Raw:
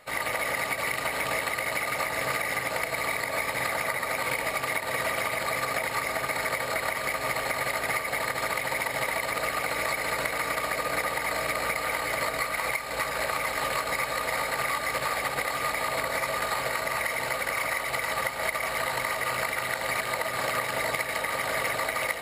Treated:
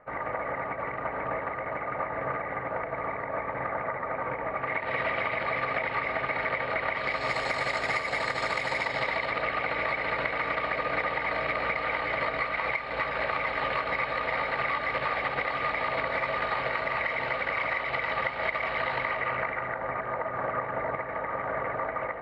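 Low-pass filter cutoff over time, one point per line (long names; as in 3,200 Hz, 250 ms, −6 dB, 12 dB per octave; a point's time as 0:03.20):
low-pass filter 24 dB per octave
0:04.50 1,600 Hz
0:04.92 3,000 Hz
0:06.88 3,000 Hz
0:07.34 6,300 Hz
0:08.71 6,300 Hz
0:09.45 3,300 Hz
0:18.95 3,300 Hz
0:19.81 1,600 Hz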